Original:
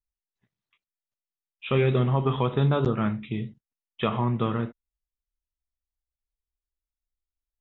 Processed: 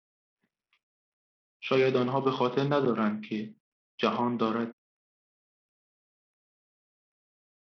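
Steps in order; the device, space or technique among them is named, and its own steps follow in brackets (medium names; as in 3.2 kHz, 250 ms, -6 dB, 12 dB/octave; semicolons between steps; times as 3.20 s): Bluetooth headset (high-pass 190 Hz 24 dB/octave; resampled via 8 kHz; SBC 64 kbps 44.1 kHz)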